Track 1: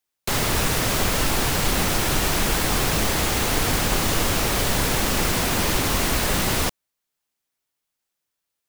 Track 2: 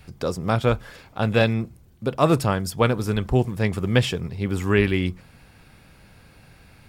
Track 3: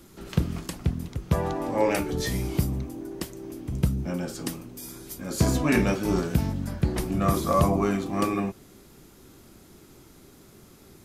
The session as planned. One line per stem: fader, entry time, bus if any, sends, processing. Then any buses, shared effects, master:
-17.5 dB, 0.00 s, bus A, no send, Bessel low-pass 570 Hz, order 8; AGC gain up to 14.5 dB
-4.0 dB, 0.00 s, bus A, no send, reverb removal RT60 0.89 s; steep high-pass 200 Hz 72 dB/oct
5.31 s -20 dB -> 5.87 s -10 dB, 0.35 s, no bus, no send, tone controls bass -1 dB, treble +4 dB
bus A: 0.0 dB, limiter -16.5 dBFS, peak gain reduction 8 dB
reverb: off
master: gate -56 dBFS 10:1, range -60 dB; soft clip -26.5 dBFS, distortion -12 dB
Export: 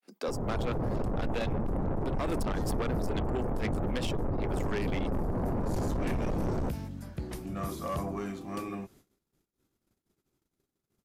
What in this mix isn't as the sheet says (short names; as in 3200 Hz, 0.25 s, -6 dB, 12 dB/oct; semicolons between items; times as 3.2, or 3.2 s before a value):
stem 1 -17.5 dB -> -10.0 dB; stem 3: missing tone controls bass -1 dB, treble +4 dB